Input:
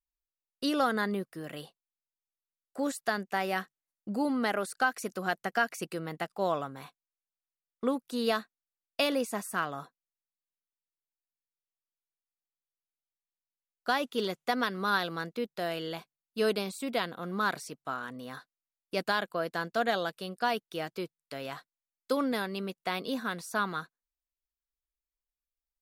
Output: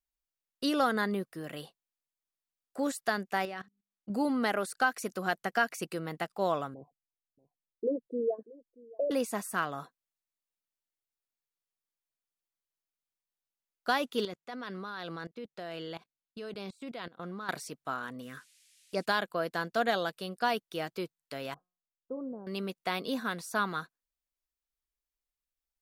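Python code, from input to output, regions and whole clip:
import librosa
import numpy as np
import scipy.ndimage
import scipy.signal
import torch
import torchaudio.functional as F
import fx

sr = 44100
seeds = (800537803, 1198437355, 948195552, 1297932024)

y = fx.chain(x, sr, fx.lowpass(hz=6200.0, slope=12),
    fx.hum_notches(base_hz=50, count=8),
    fx.level_steps(step_db=20), at=(3.45, 4.1))
y = fx.chain(y, sr, fx.envelope_sharpen(power=3.0),
    fx.cheby2_lowpass(hz=1200.0, order=4, stop_db=40),
    fx.echo_single(ms=633, db=-22.0), at=(6.74, 9.11))
y = fx.chain(y, sr, fx.level_steps(step_db=20),
    fx.air_absorb(metres=50.0), at=(14.25, 17.49))
y = fx.env_phaser(y, sr, low_hz=260.0, high_hz=3200.0, full_db=-31.5, at=(18.21, 19.04), fade=0.02)
y = fx.dmg_noise_band(y, sr, seeds[0], low_hz=2100.0, high_hz=11000.0, level_db=-65.0, at=(18.21, 19.04), fade=0.02)
y = fx.chain(y, sr, fx.gaussian_blur(sigma=12.0),
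    fx.comb_fb(f0_hz=180.0, decay_s=0.46, harmonics='all', damping=0.0, mix_pct=60), at=(21.54, 22.47))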